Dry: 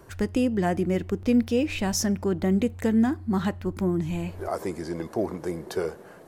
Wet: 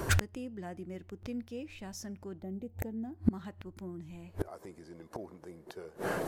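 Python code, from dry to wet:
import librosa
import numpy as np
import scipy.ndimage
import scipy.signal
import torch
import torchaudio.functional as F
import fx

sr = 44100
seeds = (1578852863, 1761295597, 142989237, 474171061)

y = fx.gate_flip(x, sr, shuts_db=-26.0, range_db=-32)
y = fx.spec_box(y, sr, start_s=2.42, length_s=0.75, low_hz=920.0, high_hz=12000.0, gain_db=-11)
y = F.gain(torch.from_numpy(y), 14.0).numpy()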